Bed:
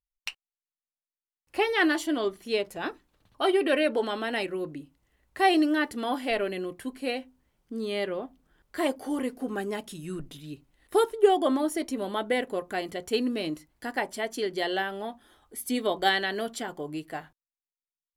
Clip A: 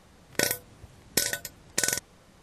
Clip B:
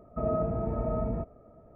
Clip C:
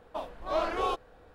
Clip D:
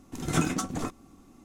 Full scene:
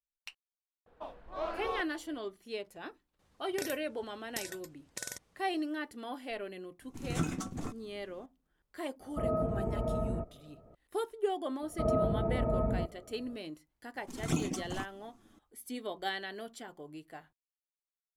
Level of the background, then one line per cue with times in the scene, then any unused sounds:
bed -12 dB
0.86 add C -7.5 dB + high shelf 4900 Hz -9 dB
3.19 add A -15 dB
6.82 add D -10 dB + low shelf 200 Hz +7.5 dB
9 add B -3 dB
11.62 add B -0.5 dB
13.95 add D -5 dB + envelope flanger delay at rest 11.9 ms, full sweep at -24 dBFS

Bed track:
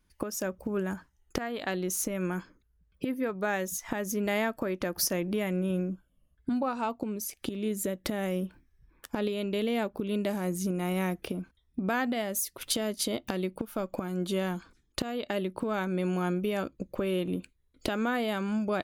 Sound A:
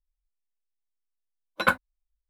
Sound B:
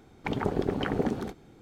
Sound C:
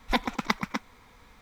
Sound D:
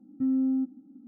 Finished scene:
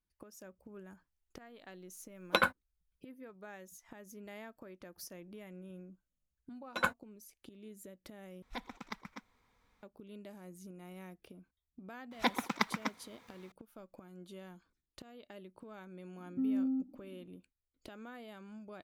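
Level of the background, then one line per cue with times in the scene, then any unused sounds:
bed track -20 dB
0.75 add A -8 dB + recorder AGC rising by 12 dB/s
5.16 add A -9.5 dB + bell 6800 Hz +11.5 dB 0.27 oct
8.42 replace with C -17.5 dB
12.11 add C -5 dB + HPF 140 Hz
16.17 add D -7 dB + mismatched tape noise reduction decoder only
not used: B

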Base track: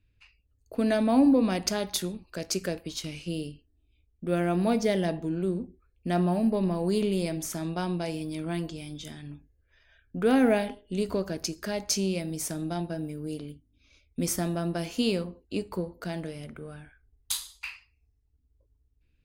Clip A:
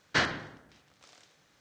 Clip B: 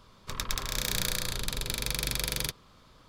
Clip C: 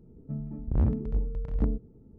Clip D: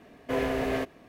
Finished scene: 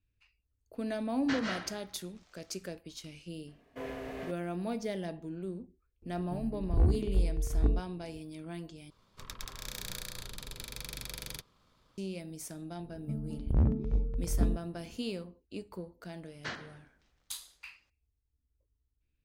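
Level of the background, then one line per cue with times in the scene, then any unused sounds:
base track -10.5 dB
1.14 add A -11 dB + digital reverb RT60 0.46 s, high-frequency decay 0.85×, pre-delay 0.115 s, DRR -0.5 dB
3.47 add D -12.5 dB
6.02 add C -3.5 dB + comb 2.7 ms, depth 72%
8.9 replace with B -9.5 dB + half-wave gain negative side -3 dB
12.79 add C -1.5 dB
16.3 add A -13.5 dB

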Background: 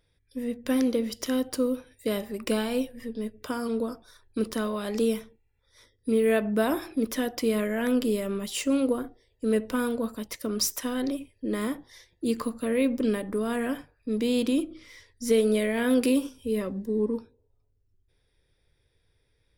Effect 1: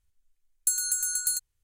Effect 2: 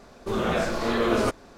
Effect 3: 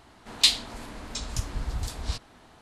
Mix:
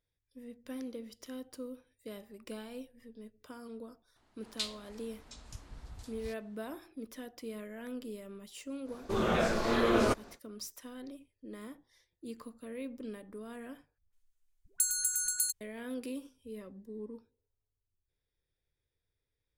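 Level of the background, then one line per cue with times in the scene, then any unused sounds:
background -17 dB
4.16 add 3 -17 dB
8.83 add 2 -4 dB, fades 0.10 s
13.98 replace with 1 -4 dB + dispersion highs, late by 0.15 s, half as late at 510 Hz

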